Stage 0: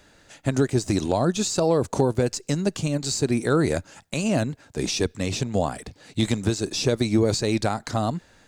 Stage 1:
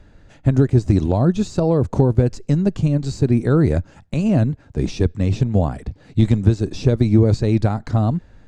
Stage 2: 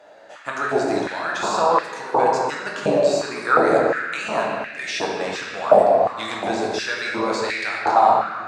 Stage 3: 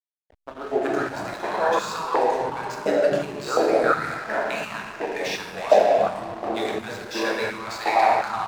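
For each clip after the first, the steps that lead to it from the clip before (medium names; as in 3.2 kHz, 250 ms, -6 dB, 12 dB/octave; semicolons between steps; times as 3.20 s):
RIAA curve playback; trim -1 dB
simulated room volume 120 m³, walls hard, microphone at 0.64 m; step-sequenced high-pass 2.8 Hz 640–1900 Hz; trim +2.5 dB
three bands offset in time mids, lows, highs 260/370 ms, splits 210/1100 Hz; hysteresis with a dead band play -31 dBFS; trim -1.5 dB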